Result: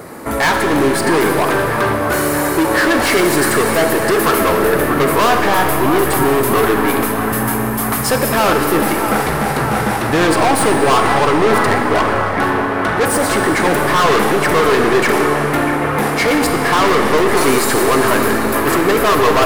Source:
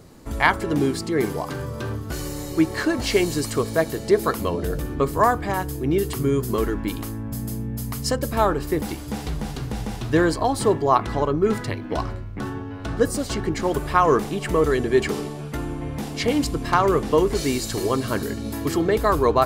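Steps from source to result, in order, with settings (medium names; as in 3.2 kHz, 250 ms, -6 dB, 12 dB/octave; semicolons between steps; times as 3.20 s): high-order bell 4.5 kHz -11.5 dB; overdrive pedal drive 34 dB, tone 7.7 kHz, clips at -2 dBFS; on a send: feedback echo behind a band-pass 638 ms, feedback 77%, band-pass 1.1 kHz, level -7 dB; on the sum: algorithmic reverb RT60 3 s, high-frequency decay 1×, pre-delay 5 ms, DRR 4.5 dB; trim -5 dB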